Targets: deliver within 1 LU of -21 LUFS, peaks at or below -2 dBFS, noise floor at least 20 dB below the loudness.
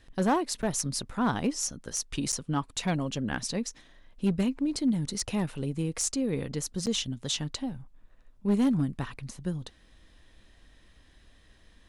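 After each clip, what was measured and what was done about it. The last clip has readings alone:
clipped 0.4%; flat tops at -19.0 dBFS; dropouts 3; longest dropout 8.2 ms; loudness -30.5 LUFS; peak -19.0 dBFS; loudness target -21.0 LUFS
-> clip repair -19 dBFS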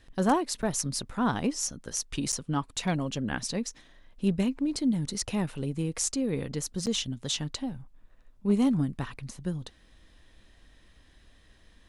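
clipped 0.0%; dropouts 3; longest dropout 8.2 ms
-> interpolate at 0.62/2.32/6.86, 8.2 ms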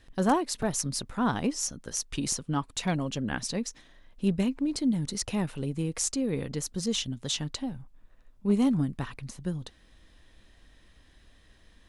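dropouts 0; loudness -30.0 LUFS; peak -12.0 dBFS; loudness target -21.0 LUFS
-> gain +9 dB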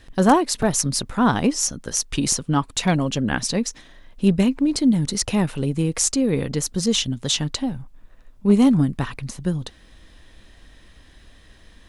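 loudness -21.0 LUFS; peak -3.0 dBFS; noise floor -50 dBFS

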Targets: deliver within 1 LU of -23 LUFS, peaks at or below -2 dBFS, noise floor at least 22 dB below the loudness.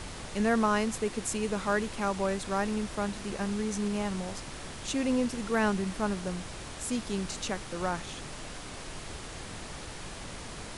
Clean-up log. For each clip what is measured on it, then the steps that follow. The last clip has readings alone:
noise floor -42 dBFS; noise floor target -55 dBFS; loudness -32.5 LUFS; peak -14.0 dBFS; loudness target -23.0 LUFS
-> noise print and reduce 13 dB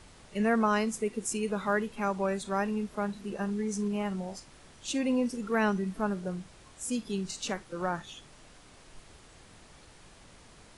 noise floor -55 dBFS; loudness -31.5 LUFS; peak -14.5 dBFS; loudness target -23.0 LUFS
-> gain +8.5 dB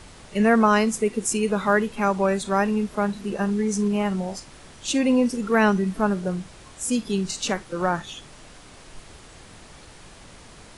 loudness -23.0 LUFS; peak -6.0 dBFS; noise floor -47 dBFS

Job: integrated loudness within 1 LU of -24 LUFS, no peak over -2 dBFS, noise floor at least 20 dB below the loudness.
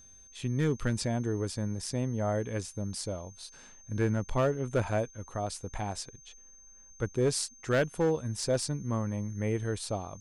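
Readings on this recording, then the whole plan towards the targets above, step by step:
clipped 0.6%; flat tops at -20.5 dBFS; steady tone 6300 Hz; tone level -53 dBFS; loudness -32.0 LUFS; peak -20.5 dBFS; loudness target -24.0 LUFS
-> clip repair -20.5 dBFS; notch 6300 Hz, Q 30; gain +8 dB

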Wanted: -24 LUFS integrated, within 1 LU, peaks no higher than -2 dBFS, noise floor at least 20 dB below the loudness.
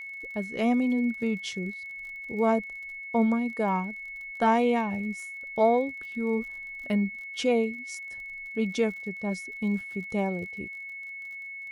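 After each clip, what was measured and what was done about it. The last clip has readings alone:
ticks 37/s; steady tone 2200 Hz; tone level -37 dBFS; loudness -29.0 LUFS; peak -10.5 dBFS; loudness target -24.0 LUFS
-> de-click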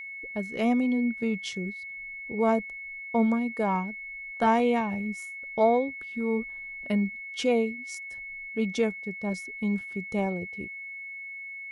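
ticks 0/s; steady tone 2200 Hz; tone level -37 dBFS
-> notch 2200 Hz, Q 30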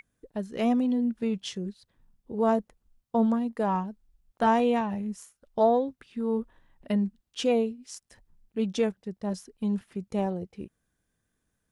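steady tone none; loudness -28.5 LUFS; peak -10.5 dBFS; loudness target -24.0 LUFS
-> gain +4.5 dB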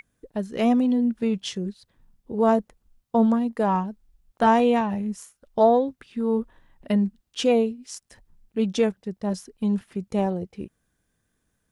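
loudness -24.0 LUFS; peak -6.0 dBFS; noise floor -75 dBFS

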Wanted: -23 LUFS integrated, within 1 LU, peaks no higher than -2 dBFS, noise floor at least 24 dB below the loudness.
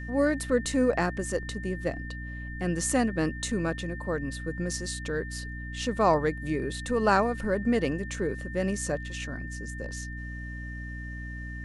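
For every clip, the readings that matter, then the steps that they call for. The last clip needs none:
hum 60 Hz; harmonics up to 300 Hz; hum level -36 dBFS; steady tone 1800 Hz; tone level -41 dBFS; loudness -29.5 LUFS; peak -10.0 dBFS; loudness target -23.0 LUFS
-> de-hum 60 Hz, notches 5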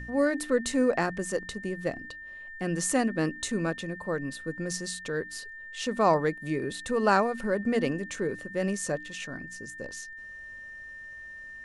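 hum none; steady tone 1800 Hz; tone level -41 dBFS
-> notch 1800 Hz, Q 30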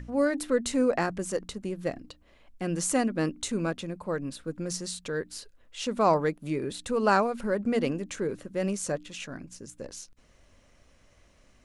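steady tone none; loudness -29.5 LUFS; peak -10.5 dBFS; loudness target -23.0 LUFS
-> gain +6.5 dB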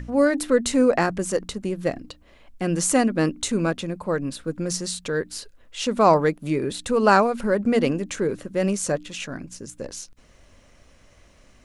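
loudness -23.0 LUFS; peak -4.0 dBFS; noise floor -55 dBFS

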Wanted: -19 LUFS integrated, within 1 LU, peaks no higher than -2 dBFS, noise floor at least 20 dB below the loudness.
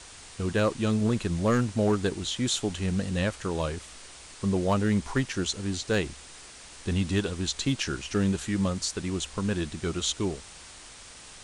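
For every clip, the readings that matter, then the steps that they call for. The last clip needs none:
clipped 0.3%; flat tops at -17.0 dBFS; noise floor -47 dBFS; noise floor target -49 dBFS; loudness -28.5 LUFS; peak -17.0 dBFS; loudness target -19.0 LUFS
-> clip repair -17 dBFS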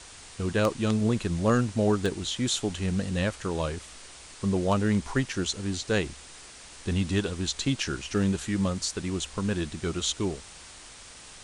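clipped 0.0%; noise floor -47 dBFS; noise floor target -48 dBFS
-> denoiser 6 dB, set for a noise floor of -47 dBFS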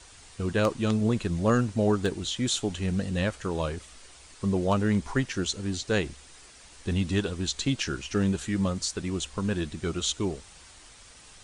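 noise floor -51 dBFS; loudness -28.5 LUFS; peak -8.5 dBFS; loudness target -19.0 LUFS
-> gain +9.5 dB; limiter -2 dBFS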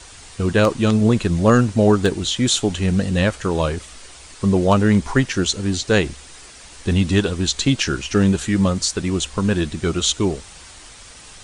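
loudness -19.0 LUFS; peak -2.0 dBFS; noise floor -42 dBFS

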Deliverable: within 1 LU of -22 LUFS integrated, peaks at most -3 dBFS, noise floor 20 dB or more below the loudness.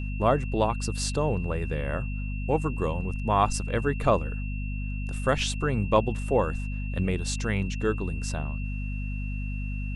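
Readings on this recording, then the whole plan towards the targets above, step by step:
hum 50 Hz; harmonics up to 250 Hz; hum level -29 dBFS; steady tone 2700 Hz; tone level -42 dBFS; loudness -28.5 LUFS; peak -7.5 dBFS; loudness target -22.0 LUFS
-> notches 50/100/150/200/250 Hz; notch 2700 Hz, Q 30; gain +6.5 dB; limiter -3 dBFS

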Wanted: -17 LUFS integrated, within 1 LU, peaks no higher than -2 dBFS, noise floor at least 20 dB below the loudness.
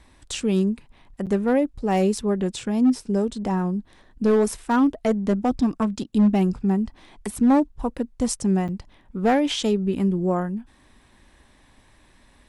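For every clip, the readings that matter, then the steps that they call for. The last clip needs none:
clipped 0.7%; flat tops at -12.5 dBFS; dropouts 2; longest dropout 7.6 ms; loudness -23.0 LUFS; peak -12.5 dBFS; loudness target -17.0 LUFS
-> clip repair -12.5 dBFS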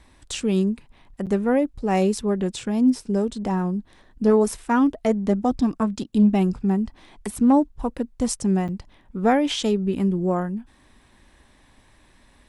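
clipped 0.0%; dropouts 2; longest dropout 7.6 ms
-> interpolate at 1.26/8.68, 7.6 ms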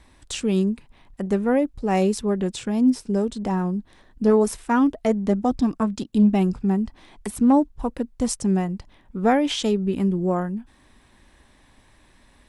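dropouts 0; loudness -22.5 LUFS; peak -6.5 dBFS; loudness target -17.0 LUFS
-> gain +5.5 dB; limiter -2 dBFS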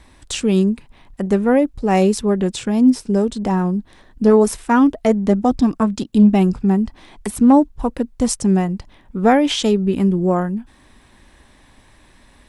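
loudness -17.0 LUFS; peak -2.0 dBFS; noise floor -51 dBFS

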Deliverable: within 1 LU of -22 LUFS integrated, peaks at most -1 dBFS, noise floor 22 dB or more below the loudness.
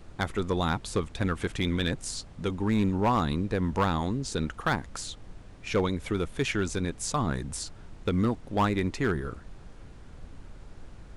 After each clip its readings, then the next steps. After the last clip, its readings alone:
clipped 0.6%; flat tops at -18.5 dBFS; noise floor -48 dBFS; noise floor target -52 dBFS; loudness -29.5 LUFS; peak -18.5 dBFS; loudness target -22.0 LUFS
-> clip repair -18.5 dBFS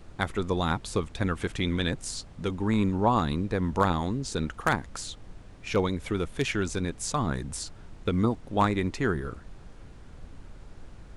clipped 0.0%; noise floor -48 dBFS; noise floor target -51 dBFS
-> noise print and reduce 6 dB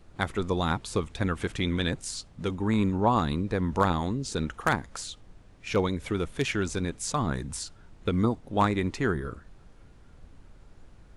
noise floor -54 dBFS; loudness -29.0 LUFS; peak -9.5 dBFS; loudness target -22.0 LUFS
-> gain +7 dB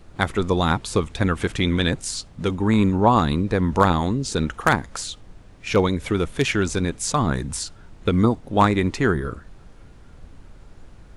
loudness -22.0 LUFS; peak -2.5 dBFS; noise floor -47 dBFS

